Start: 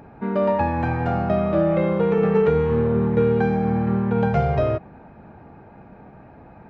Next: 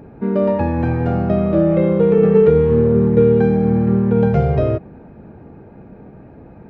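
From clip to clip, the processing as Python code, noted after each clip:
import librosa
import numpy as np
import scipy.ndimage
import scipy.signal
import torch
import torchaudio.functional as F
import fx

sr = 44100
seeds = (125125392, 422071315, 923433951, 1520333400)

y = fx.low_shelf_res(x, sr, hz=600.0, db=6.5, q=1.5)
y = y * 10.0 ** (-1.0 / 20.0)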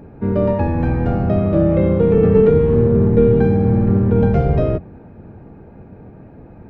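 y = fx.octave_divider(x, sr, octaves=1, level_db=-2.0)
y = y * 10.0 ** (-1.0 / 20.0)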